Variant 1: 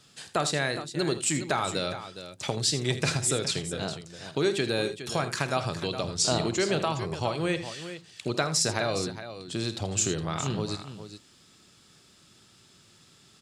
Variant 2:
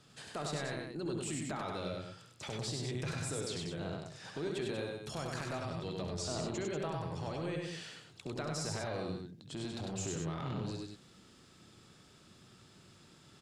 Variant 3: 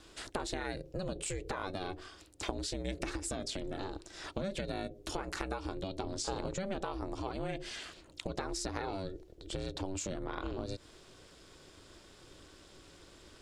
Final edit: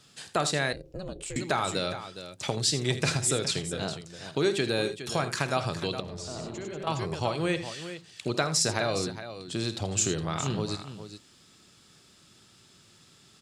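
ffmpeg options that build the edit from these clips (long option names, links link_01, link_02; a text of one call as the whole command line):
ffmpeg -i take0.wav -i take1.wav -i take2.wav -filter_complex "[0:a]asplit=3[link_01][link_02][link_03];[link_01]atrim=end=0.732[link_04];[2:a]atrim=start=0.728:end=1.362[link_05];[link_02]atrim=start=1.358:end=6.002[link_06];[1:a]atrim=start=5.998:end=6.872[link_07];[link_03]atrim=start=6.868[link_08];[link_04][link_05]acrossfade=duration=0.004:curve1=hsin:curve2=hsin[link_09];[link_09][link_06]acrossfade=duration=0.004:curve1=hsin:curve2=hsin[link_10];[link_10][link_07]acrossfade=duration=0.004:curve1=hsin:curve2=hsin[link_11];[link_11][link_08]acrossfade=duration=0.004:curve1=hsin:curve2=hsin" out.wav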